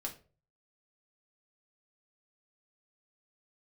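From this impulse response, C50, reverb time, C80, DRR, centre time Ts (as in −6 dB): 12.5 dB, 0.40 s, 18.0 dB, −0.5 dB, 13 ms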